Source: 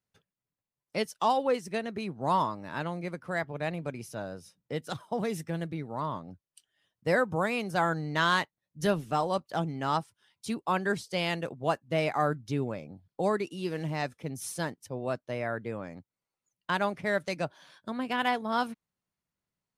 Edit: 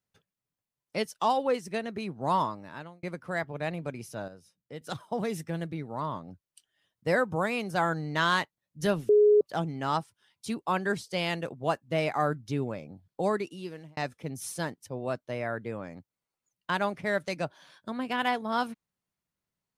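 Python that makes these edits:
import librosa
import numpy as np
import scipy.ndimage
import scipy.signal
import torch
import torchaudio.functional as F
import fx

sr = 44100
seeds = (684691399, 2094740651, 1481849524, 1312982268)

y = fx.edit(x, sr, fx.fade_out_span(start_s=2.45, length_s=0.58),
    fx.clip_gain(start_s=4.28, length_s=0.53, db=-8.0),
    fx.bleep(start_s=9.09, length_s=0.32, hz=418.0, db=-16.0),
    fx.fade_out_span(start_s=13.37, length_s=0.6), tone=tone)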